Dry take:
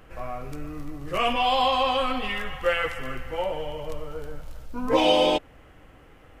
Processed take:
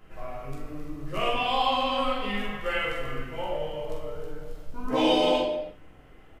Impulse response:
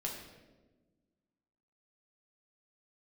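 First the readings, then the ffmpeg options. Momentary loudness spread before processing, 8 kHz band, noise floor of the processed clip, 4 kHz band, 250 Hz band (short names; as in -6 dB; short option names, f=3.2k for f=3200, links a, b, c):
17 LU, -4.0 dB, -52 dBFS, -2.5 dB, 0.0 dB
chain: -filter_complex "[0:a]asplit=2[a][b];[b]adelay=44,volume=-6dB[c];[a][c]amix=inputs=2:normalize=0[d];[1:a]atrim=start_sample=2205,afade=t=out:st=0.4:d=0.01,atrim=end_sample=18081[e];[d][e]afir=irnorm=-1:irlink=0,volume=-4.5dB"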